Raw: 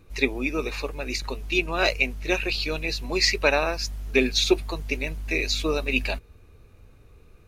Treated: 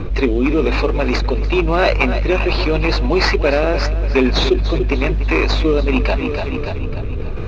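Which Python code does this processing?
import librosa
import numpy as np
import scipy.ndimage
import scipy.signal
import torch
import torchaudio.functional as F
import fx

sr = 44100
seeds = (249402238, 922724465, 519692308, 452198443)

p1 = fx.rotary(x, sr, hz=0.9)
p2 = fx.sample_hold(p1, sr, seeds[0], rate_hz=3500.0, jitter_pct=20)
p3 = p1 + (p2 * librosa.db_to_amplitude(-6.0))
p4 = fx.air_absorb(p3, sr, metres=220.0)
p5 = fx.echo_feedback(p4, sr, ms=291, feedback_pct=48, wet_db=-17.0)
p6 = fx.env_flatten(p5, sr, amount_pct=70)
y = p6 * librosa.db_to_amplitude(1.5)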